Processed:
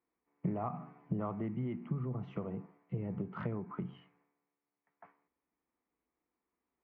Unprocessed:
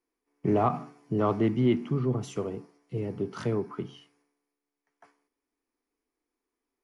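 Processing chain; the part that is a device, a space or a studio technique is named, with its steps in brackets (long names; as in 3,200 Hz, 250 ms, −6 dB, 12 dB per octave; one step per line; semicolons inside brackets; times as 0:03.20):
bass amplifier (downward compressor 4 to 1, threshold −36 dBFS, peak gain reduction 14.5 dB; loudspeaker in its box 62–2,200 Hz, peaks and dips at 64 Hz +8 dB, 180 Hz +8 dB, 280 Hz −6 dB, 410 Hz −7 dB, 1,600 Hz −4 dB)
level +1 dB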